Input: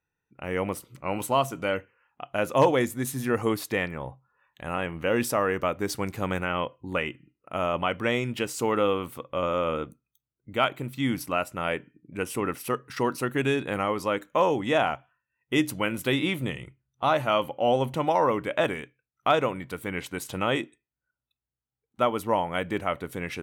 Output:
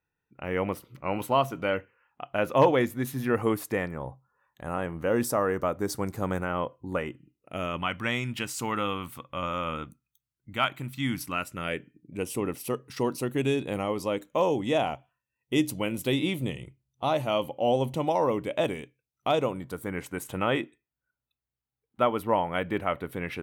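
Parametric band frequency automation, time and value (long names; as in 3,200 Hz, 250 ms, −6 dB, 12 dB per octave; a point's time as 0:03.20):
parametric band −11 dB 1.1 octaves
0:03.22 8,100 Hz
0:03.88 2,700 Hz
0:07.09 2,700 Hz
0:07.93 460 Hz
0:11.09 460 Hz
0:12.17 1,500 Hz
0:19.34 1,500 Hz
0:20.59 6,800 Hz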